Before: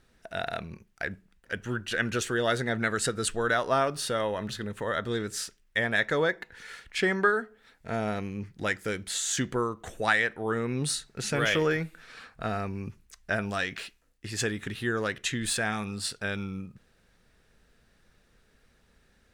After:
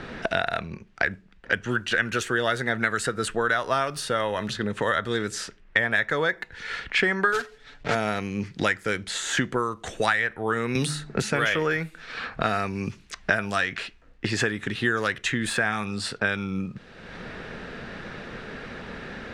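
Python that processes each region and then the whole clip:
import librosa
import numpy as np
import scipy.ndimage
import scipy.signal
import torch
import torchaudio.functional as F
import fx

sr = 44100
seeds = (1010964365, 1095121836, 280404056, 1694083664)

y = fx.chain(x, sr, fx.block_float(bits=3),
    fx.air_absorb(metres=65.0),
    fx.comb(ms=6.9, depth=0.67), at=(7.32, 7.95))
y = fx.chain(y, sr, fx.low_shelf(hz=320.0, db=6.0),
    fx.hum_notches(base_hz=50, count=7),
    fx.band_squash(depth_pct=70), at=(10.75, 11.22))
y = fx.env_lowpass(y, sr, base_hz=2700.0, full_db=-26.0)
y = fx.dynamic_eq(y, sr, hz=1500.0, q=0.7, threshold_db=-38.0, ratio=4.0, max_db=6)
y = fx.band_squash(y, sr, depth_pct=100)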